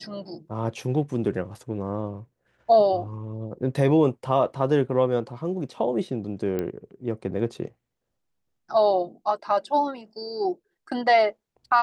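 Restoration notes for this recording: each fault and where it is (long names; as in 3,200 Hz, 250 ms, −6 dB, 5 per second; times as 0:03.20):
0:06.59: click −16 dBFS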